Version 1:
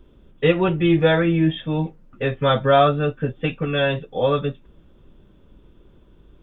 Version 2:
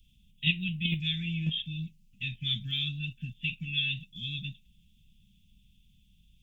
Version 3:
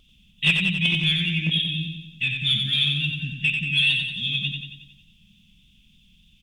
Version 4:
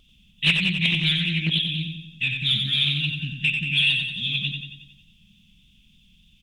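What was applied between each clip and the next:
Chebyshev band-stop filter 200–2,600 Hz, order 4; in parallel at 0 dB: output level in coarse steps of 21 dB; on the sum: bass and treble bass −9 dB, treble +9 dB; level −4 dB
mid-hump overdrive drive 15 dB, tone 2,000 Hz, clips at −11.5 dBFS; pitch vibrato 3.4 Hz 42 cents; repeating echo 91 ms, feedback 54%, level −5 dB; level +6.5 dB
highs frequency-modulated by the lows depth 0.22 ms

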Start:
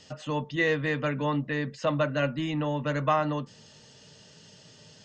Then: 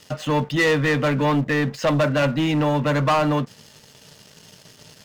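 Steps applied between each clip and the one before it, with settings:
leveller curve on the samples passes 3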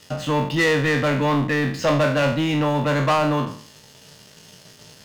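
peak hold with a decay on every bin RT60 0.52 s
level −1 dB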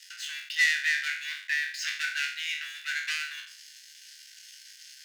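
Chebyshev high-pass with heavy ripple 1,500 Hz, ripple 3 dB

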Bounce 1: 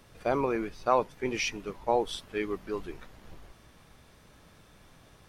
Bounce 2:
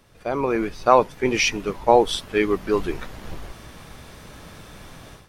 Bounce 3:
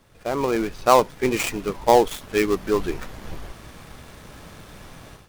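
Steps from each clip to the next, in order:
automatic gain control gain up to 14.5 dB
gap after every zero crossing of 0.11 ms

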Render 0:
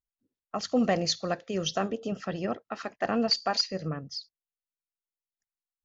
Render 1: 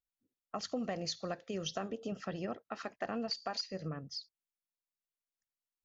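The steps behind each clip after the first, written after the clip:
downward compressor, threshold −29 dBFS, peak gain reduction 9 dB
level −5 dB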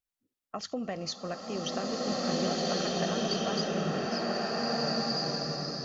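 slow-attack reverb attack 1,730 ms, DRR −7 dB
level +2 dB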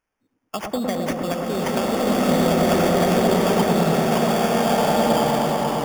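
sample-rate reduction 4,000 Hz, jitter 0%
delay with a low-pass on its return 108 ms, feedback 83%, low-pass 1,300 Hz, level −4 dB
level +9 dB

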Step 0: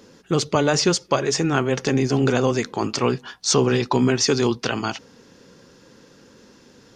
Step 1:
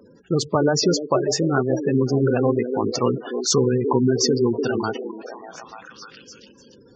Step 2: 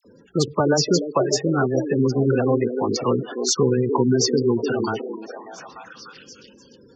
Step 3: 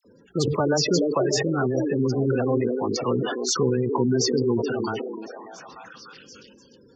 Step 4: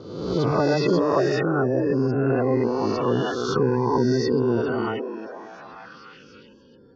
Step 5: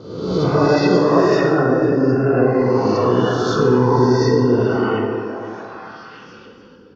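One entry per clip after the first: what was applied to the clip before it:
echo through a band-pass that steps 296 ms, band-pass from 350 Hz, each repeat 0.7 octaves, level −4 dB; gate on every frequency bin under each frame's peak −15 dB strong
all-pass dispersion lows, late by 50 ms, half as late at 1,800 Hz
level that may fall only so fast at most 31 dB per second; level −4 dB
peak hold with a rise ahead of every peak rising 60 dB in 1.09 s; high-frequency loss of the air 300 metres
single-tap delay 498 ms −18.5 dB; dense smooth reverb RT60 1.8 s, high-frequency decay 0.55×, DRR −2 dB; level +2 dB

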